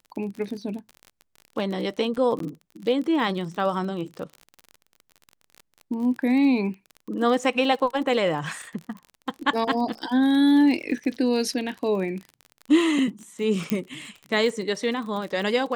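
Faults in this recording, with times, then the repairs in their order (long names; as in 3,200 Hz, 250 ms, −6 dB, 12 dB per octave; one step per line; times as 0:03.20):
surface crackle 38 per second −32 dBFS
0:02.39–0:02.40: drop-out 13 ms
0:13.70: click −9 dBFS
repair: click removal
repair the gap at 0:02.39, 13 ms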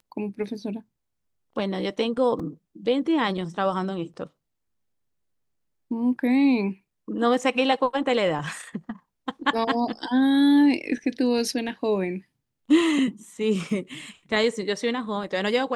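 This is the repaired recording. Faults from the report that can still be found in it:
0:13.70: click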